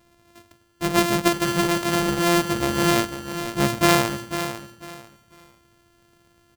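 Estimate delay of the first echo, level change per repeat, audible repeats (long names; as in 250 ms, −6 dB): 497 ms, −12.0 dB, 3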